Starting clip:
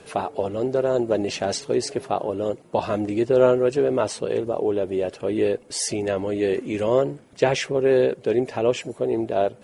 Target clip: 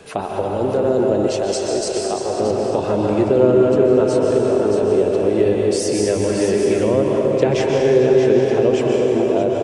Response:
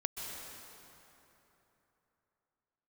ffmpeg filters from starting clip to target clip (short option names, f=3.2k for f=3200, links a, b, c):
-filter_complex "[0:a]aecho=1:1:625:0.398[a];[1:a]atrim=start_sample=2205[b];[a][b]afir=irnorm=-1:irlink=0,acrossover=split=490[c][d];[d]acompressor=threshold=-28dB:ratio=4[e];[c][e]amix=inputs=2:normalize=0,asettb=1/sr,asplit=3[f][g][h];[f]atrim=end=1.274[i];[g]atrim=start=1.27:end=2.4,asetpts=PTS-STARTPTS,afade=t=in:d=0.004:c=qsin,afade=t=out:st=1.126:d=0.004:c=qsin,equalizer=f=125:t=o:w=1:g=-8,equalizer=f=250:t=o:w=1:g=-8,equalizer=f=2k:t=o:w=1:g=-4,equalizer=f=8k:t=o:w=1:g=5[j];[h]atrim=start=2.396[k];[i][j]acrossfade=d=0.004:c1=hsin:c2=qsin[l];[l][k]acrossfade=d=0.004:c1=qsin:c2=hsin,aresample=22050,aresample=44100,volume=5dB"